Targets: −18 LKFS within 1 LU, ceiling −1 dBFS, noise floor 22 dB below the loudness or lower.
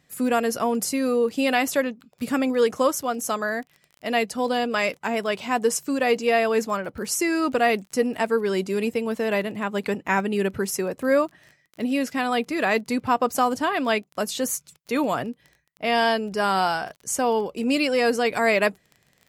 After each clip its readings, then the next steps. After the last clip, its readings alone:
crackle rate 23 per second; integrated loudness −24.0 LKFS; sample peak −8.0 dBFS; target loudness −18.0 LKFS
→ click removal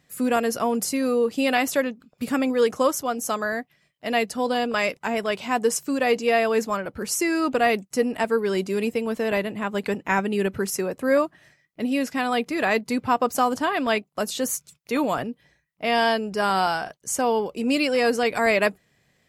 crackle rate 0.10 per second; integrated loudness −24.0 LKFS; sample peak −8.0 dBFS; target loudness −18.0 LKFS
→ level +6 dB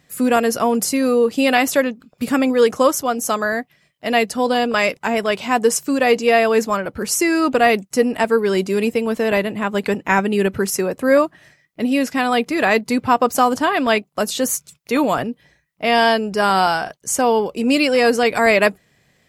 integrated loudness −18.0 LKFS; sample peak −2.0 dBFS; background noise floor −62 dBFS

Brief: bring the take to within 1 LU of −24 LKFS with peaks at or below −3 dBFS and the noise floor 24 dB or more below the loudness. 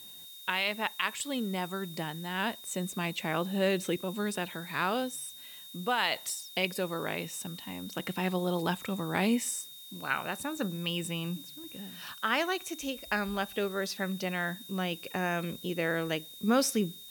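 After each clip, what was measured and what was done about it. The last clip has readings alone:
interfering tone 3,700 Hz; level of the tone −48 dBFS; background noise floor −48 dBFS; target noise floor −57 dBFS; integrated loudness −32.5 LKFS; sample peak −13.5 dBFS; target loudness −24.0 LKFS
→ notch filter 3,700 Hz, Q 30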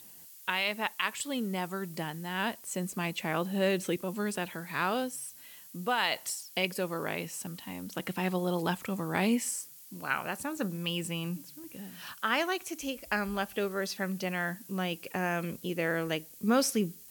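interfering tone none found; background noise floor −52 dBFS; target noise floor −57 dBFS
→ noise reduction from a noise print 6 dB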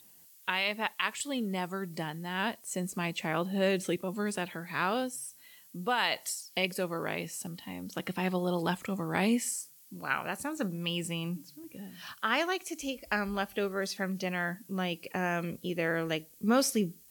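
background noise floor −57 dBFS; integrated loudness −32.5 LKFS; sample peak −14.0 dBFS; target loudness −24.0 LKFS
→ level +8.5 dB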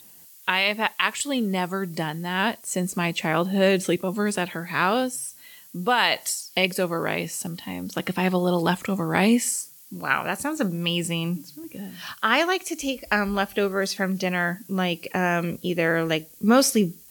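integrated loudness −24.0 LKFS; sample peak −5.5 dBFS; background noise floor −49 dBFS

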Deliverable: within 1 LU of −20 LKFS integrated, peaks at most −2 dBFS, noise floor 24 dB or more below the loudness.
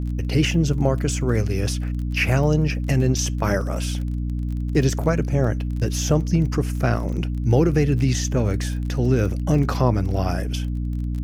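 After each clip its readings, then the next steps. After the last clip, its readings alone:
crackle rate 24 per second; mains hum 60 Hz; hum harmonics up to 300 Hz; level of the hum −22 dBFS; integrated loudness −22.0 LKFS; sample peak −4.0 dBFS; target loudness −20.0 LKFS
→ click removal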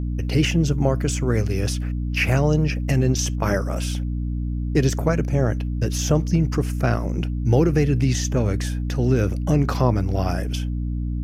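crackle rate 0 per second; mains hum 60 Hz; hum harmonics up to 300 Hz; level of the hum −22 dBFS
→ hum removal 60 Hz, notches 5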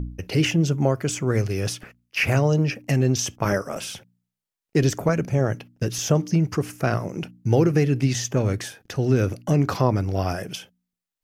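mains hum none found; integrated loudness −23.0 LKFS; sample peak −5.5 dBFS; target loudness −20.0 LKFS
→ level +3 dB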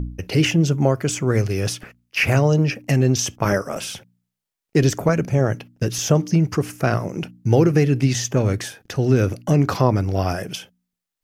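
integrated loudness −20.0 LKFS; sample peak −2.5 dBFS; background noise floor −84 dBFS

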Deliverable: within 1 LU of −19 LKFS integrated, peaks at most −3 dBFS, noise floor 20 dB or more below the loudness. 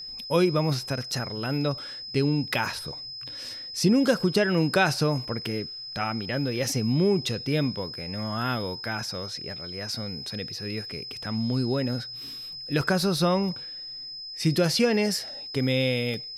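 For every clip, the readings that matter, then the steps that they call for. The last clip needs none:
number of dropouts 2; longest dropout 1.6 ms; interfering tone 5,100 Hz; level of the tone −36 dBFS; integrated loudness −27.0 LKFS; sample peak −7.5 dBFS; target loudness −19.0 LKFS
→ repair the gap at 0:12.81/0:16.14, 1.6 ms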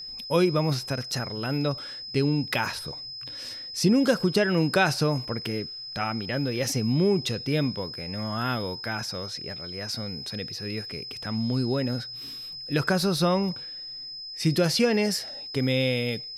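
number of dropouts 0; interfering tone 5,100 Hz; level of the tone −36 dBFS
→ notch filter 5,100 Hz, Q 30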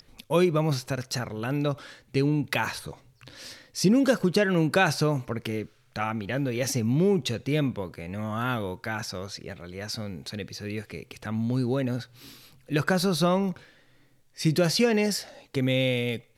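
interfering tone none found; integrated loudness −27.0 LKFS; sample peak −7.5 dBFS; target loudness −19.0 LKFS
→ level +8 dB
brickwall limiter −3 dBFS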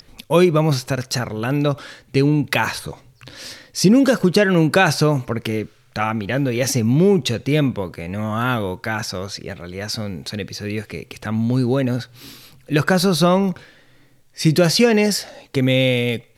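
integrated loudness −19.0 LKFS; sample peak −3.0 dBFS; background noise floor −53 dBFS

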